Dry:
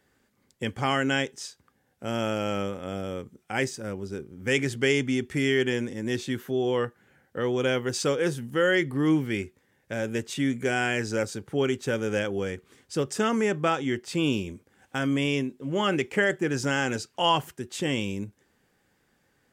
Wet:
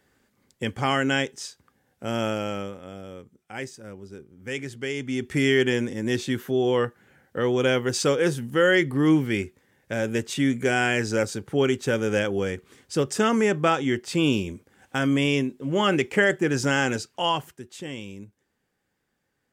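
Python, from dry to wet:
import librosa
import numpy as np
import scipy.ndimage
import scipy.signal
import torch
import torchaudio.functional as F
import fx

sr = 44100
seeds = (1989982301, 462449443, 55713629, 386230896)

y = fx.gain(x, sr, db=fx.line((2.26, 2.0), (2.94, -7.0), (4.94, -7.0), (5.34, 3.5), (16.85, 3.5), (17.87, -8.0)))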